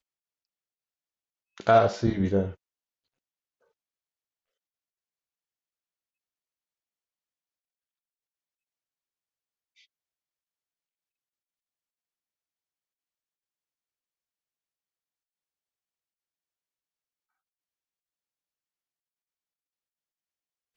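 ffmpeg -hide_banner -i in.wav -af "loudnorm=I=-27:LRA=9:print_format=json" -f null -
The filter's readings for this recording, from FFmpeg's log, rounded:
"input_i" : "-24.3",
"input_tp" : "-7.6",
"input_lra" : "5.4",
"input_thresh" : "-36.3",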